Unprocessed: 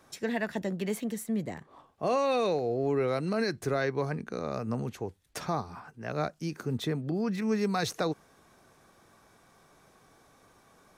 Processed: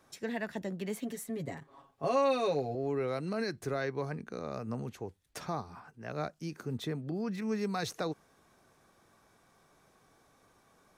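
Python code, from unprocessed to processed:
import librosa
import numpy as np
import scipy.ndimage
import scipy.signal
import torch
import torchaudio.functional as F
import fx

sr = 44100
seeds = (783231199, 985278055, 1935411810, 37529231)

y = fx.comb(x, sr, ms=7.3, depth=0.89, at=(1.01, 2.75))
y = y * 10.0 ** (-5.0 / 20.0)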